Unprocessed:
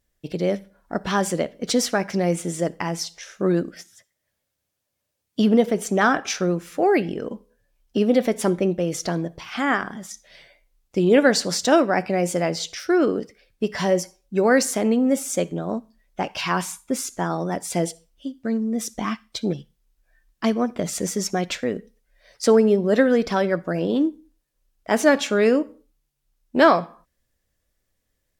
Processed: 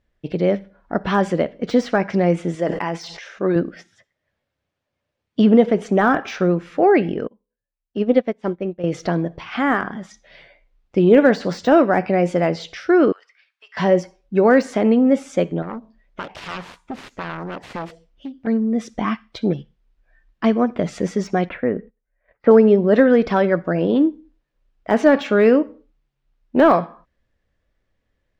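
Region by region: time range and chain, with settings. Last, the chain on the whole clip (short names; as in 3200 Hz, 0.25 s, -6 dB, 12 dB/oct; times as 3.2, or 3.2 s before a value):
2.55–3.56 low shelf 240 Hz -10.5 dB + notch 1300 Hz, Q 22 + sustainer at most 62 dB/s
7.27–8.84 LPF 8200 Hz + upward expander 2.5:1, over -31 dBFS
13.12–13.77 HPF 1100 Hz 24 dB/oct + compressor 2:1, threshold -51 dBFS
15.62–18.47 self-modulated delay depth 0.95 ms + compressor 2.5:1, threshold -33 dBFS
21.49–22.51 LPF 2100 Hz 24 dB/oct + gate -54 dBFS, range -15 dB
whole clip: LPF 2800 Hz 12 dB/oct; de-esser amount 100%; gain +4.5 dB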